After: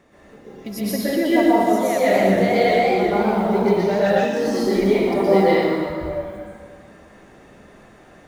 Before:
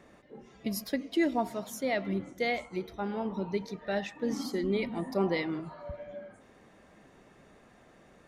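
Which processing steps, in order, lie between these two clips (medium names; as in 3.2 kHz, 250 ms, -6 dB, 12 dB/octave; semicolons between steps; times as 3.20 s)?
short-mantissa float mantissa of 4-bit; plate-style reverb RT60 2 s, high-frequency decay 0.75×, pre-delay 105 ms, DRR -9.5 dB; dynamic bell 640 Hz, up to +6 dB, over -34 dBFS, Q 1.1; 2.01–4.25 s: modulated delay 122 ms, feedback 62%, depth 157 cents, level -5 dB; trim +1 dB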